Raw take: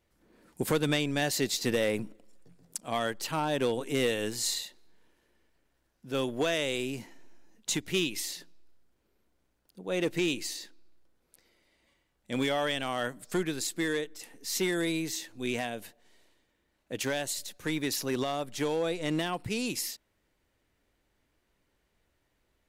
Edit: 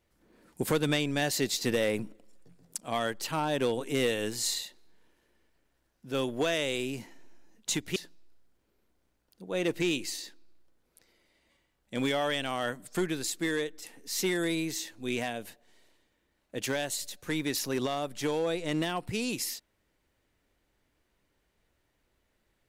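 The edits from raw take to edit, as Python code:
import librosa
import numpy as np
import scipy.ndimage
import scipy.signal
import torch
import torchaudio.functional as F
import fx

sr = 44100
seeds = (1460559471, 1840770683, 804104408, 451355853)

y = fx.edit(x, sr, fx.cut(start_s=7.96, length_s=0.37), tone=tone)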